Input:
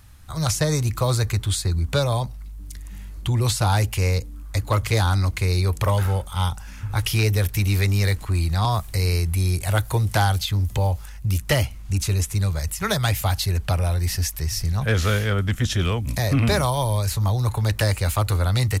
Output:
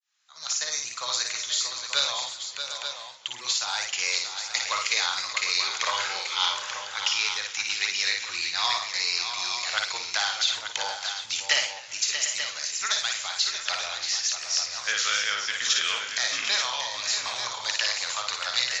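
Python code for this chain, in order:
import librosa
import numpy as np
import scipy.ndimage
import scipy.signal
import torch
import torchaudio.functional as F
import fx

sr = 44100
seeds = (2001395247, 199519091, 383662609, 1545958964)

y = fx.fade_in_head(x, sr, length_s=1.95)
y = scipy.signal.sosfilt(scipy.signal.butter(2, 1200.0, 'highpass', fs=sr, output='sos'), y)
y = fx.high_shelf(y, sr, hz=2100.0, db=11.0)
y = fx.rider(y, sr, range_db=5, speed_s=0.5)
y = fx.brickwall_lowpass(y, sr, high_hz=7400.0)
y = fx.doubler(y, sr, ms=49.0, db=-11)
y = fx.echo_multitap(y, sr, ms=(57, 633, 747, 886), db=(-5.0, -8.5, -12.5, -8.5))
y = fx.echo_warbled(y, sr, ms=132, feedback_pct=68, rate_hz=2.8, cents=192, wet_db=-19)
y = F.gain(torch.from_numpy(y), -4.5).numpy()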